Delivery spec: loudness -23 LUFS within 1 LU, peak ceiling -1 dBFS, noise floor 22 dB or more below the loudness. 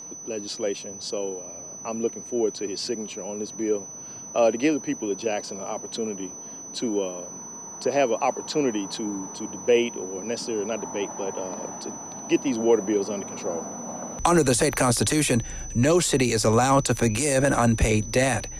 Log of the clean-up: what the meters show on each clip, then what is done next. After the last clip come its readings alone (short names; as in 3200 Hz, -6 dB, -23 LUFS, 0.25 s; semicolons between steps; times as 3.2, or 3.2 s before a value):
steady tone 6000 Hz; tone level -37 dBFS; loudness -25.0 LUFS; peak -7.0 dBFS; loudness target -23.0 LUFS
-> notch 6000 Hz, Q 30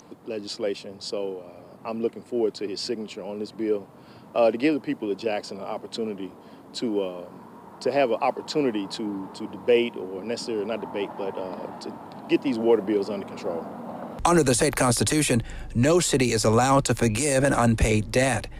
steady tone none; loudness -25.0 LUFS; peak -7.0 dBFS; loudness target -23.0 LUFS
-> gain +2 dB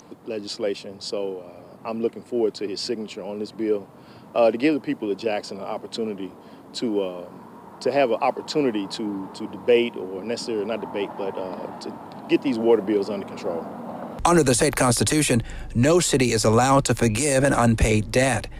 loudness -23.0 LUFS; peak -5.0 dBFS; noise floor -46 dBFS